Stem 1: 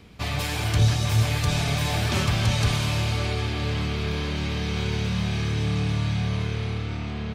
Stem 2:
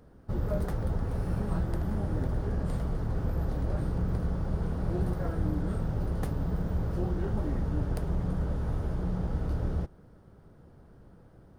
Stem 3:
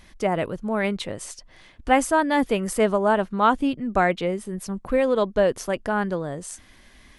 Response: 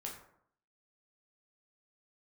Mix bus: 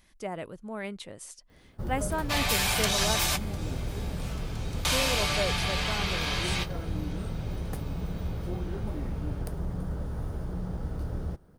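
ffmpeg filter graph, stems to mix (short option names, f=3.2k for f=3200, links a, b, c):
-filter_complex "[0:a]highpass=f=640:w=0.5412,highpass=f=640:w=1.3066,acontrast=83,adelay=2100,volume=-5.5dB,asplit=2[a][b];[b]volume=-20.5dB[c];[1:a]adelay=1500,volume=-3dB[d];[2:a]volume=-12.5dB,asplit=3[e][f][g];[e]atrim=end=3.18,asetpts=PTS-STARTPTS,afade=t=out:st=3.176:d=0.004:c=hsin[h];[f]atrim=start=3.18:end=4.82,asetpts=PTS-STARTPTS,volume=0[i];[g]atrim=start=4.82,asetpts=PTS-STARTPTS,afade=t=in:d=0.004:c=hsin[j];[h][i][j]concat=n=3:v=0:a=1,asplit=2[k][l];[l]apad=whole_len=416364[m];[a][m]sidechaingate=range=-33dB:threshold=-57dB:ratio=16:detection=peak[n];[3:a]atrim=start_sample=2205[o];[c][o]afir=irnorm=-1:irlink=0[p];[n][d][k][p]amix=inputs=4:normalize=0,crystalizer=i=1:c=0"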